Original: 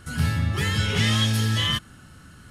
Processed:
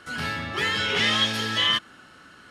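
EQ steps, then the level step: three-band isolator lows -17 dB, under 260 Hz, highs -14 dB, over 5.3 kHz; bass shelf 200 Hz -5 dB; +4.0 dB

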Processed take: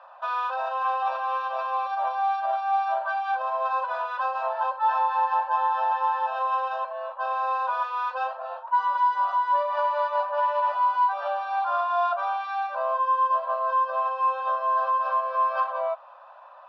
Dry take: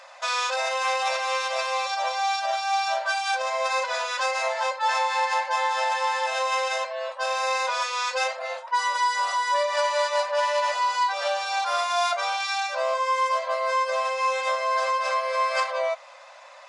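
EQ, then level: high-pass 640 Hz 12 dB/octave; low-pass 2.4 kHz 24 dB/octave; static phaser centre 870 Hz, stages 4; +3.0 dB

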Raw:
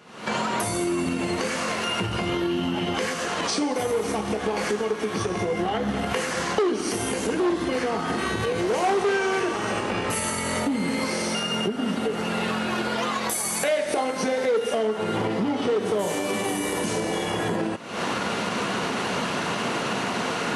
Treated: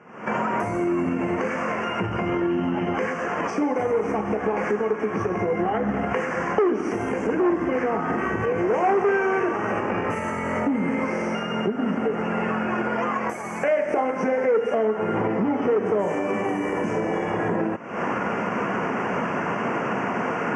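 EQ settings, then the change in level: high-pass 110 Hz 6 dB/octave; Butterworth band-stop 3.9 kHz, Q 1; distance through air 200 m; +3.0 dB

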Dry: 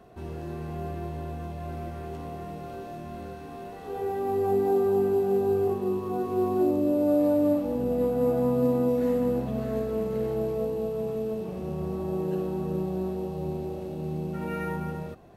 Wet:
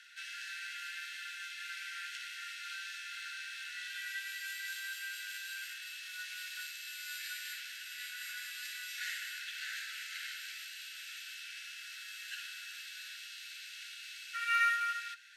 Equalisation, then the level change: Chebyshev high-pass 1.4 kHz, order 10; low-pass 5.1 kHz 12 dB/octave; tilt EQ +3.5 dB/octave; +9.0 dB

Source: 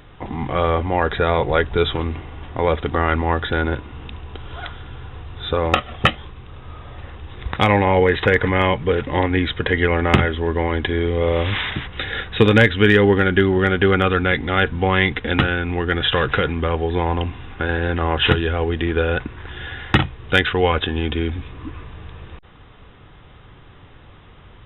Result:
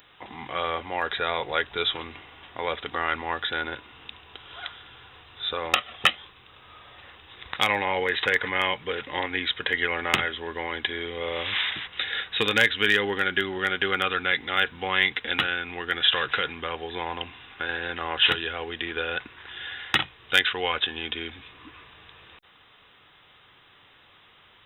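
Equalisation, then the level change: tilt EQ +4.5 dB/octave; -7.5 dB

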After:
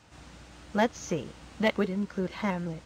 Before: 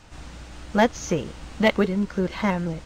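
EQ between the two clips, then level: high-pass 74 Hz; -6.5 dB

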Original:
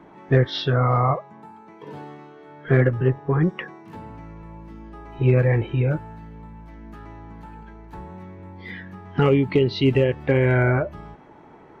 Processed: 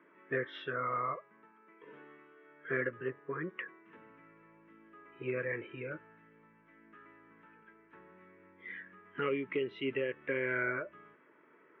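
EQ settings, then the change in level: band-pass 500–3300 Hz; distance through air 110 m; static phaser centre 1.9 kHz, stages 4; -5.5 dB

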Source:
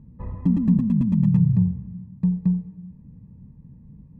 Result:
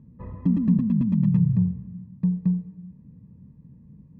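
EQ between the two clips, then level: high-pass 120 Hz 6 dB/octave; distance through air 110 m; peaking EQ 800 Hz -7 dB 0.32 oct; 0.0 dB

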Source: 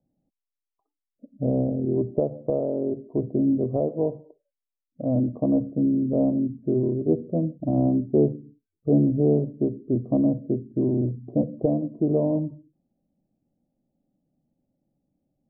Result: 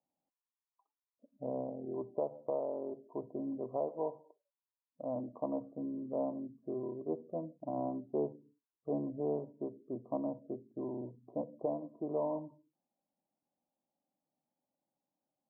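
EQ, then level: band-pass filter 990 Hz, Q 5.4; distance through air 470 m; +8.0 dB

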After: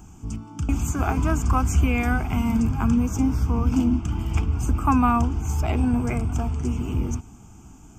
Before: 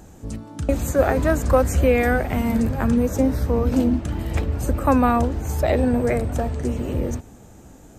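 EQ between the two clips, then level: static phaser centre 2.7 kHz, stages 8; +1.0 dB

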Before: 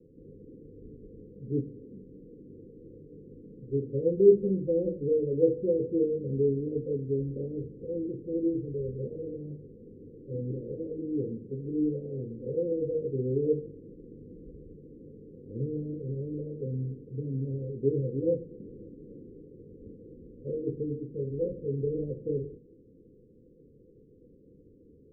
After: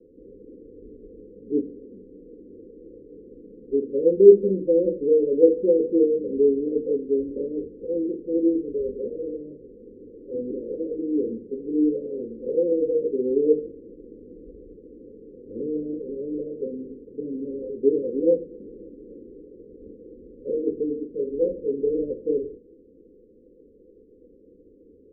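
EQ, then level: dynamic bell 240 Hz, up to +3 dB, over -37 dBFS, Q 0.81; resonant low-pass 620 Hz, resonance Q 4.6; static phaser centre 320 Hz, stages 4; +2.5 dB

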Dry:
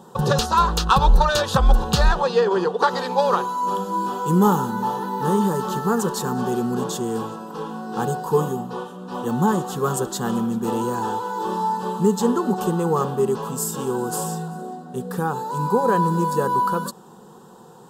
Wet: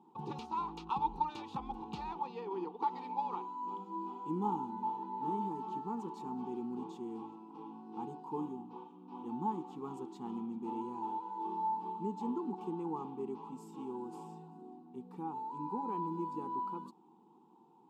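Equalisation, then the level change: vowel filter u; -5.0 dB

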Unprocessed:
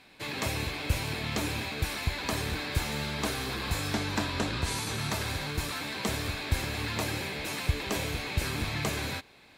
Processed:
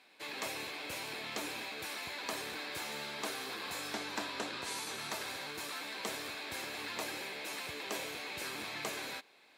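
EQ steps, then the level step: high-pass 350 Hz 12 dB/octave; -6.0 dB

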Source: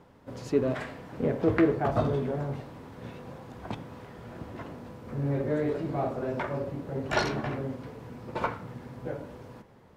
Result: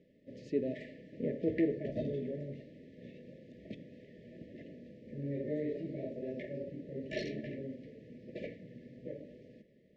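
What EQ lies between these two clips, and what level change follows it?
brick-wall FIR band-stop 660–1700 Hz; distance through air 140 m; resonant low shelf 140 Hz -7 dB, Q 1.5; -8.0 dB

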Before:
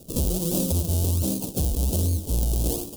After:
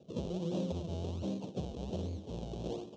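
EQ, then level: distance through air 190 m; cabinet simulation 160–6400 Hz, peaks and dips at 280 Hz -8 dB, 1.4 kHz -3 dB, 4.8 kHz -8 dB; -6.0 dB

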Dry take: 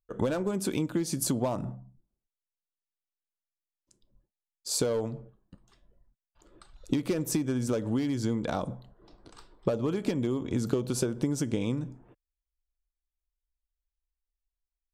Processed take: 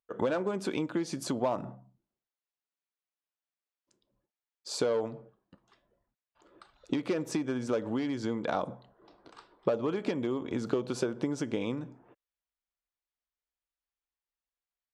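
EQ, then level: high-pass 670 Hz 6 dB/octave; tape spacing loss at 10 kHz 21 dB; +6.0 dB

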